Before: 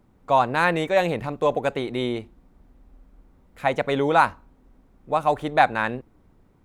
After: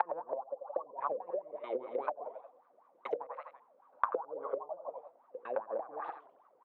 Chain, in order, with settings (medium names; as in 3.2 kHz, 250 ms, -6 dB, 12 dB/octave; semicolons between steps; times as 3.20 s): slices played last to first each 109 ms, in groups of 7; in parallel at -1 dB: peak limiter -11 dBFS, peak gain reduction 8 dB; on the sum: wah-wah 5 Hz 500–1200 Hz, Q 15; on a send: feedback delay 85 ms, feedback 48%, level -15.5 dB; on the sum: compression 4:1, threshold -36 dBFS, peak gain reduction 15 dB; hum notches 60/120/180/240/300/360/420/480 Hz; low-pass that closes with the level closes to 330 Hz, closed at -35.5 dBFS; frequency weighting A; warped record 45 rpm, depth 160 cents; trim +10.5 dB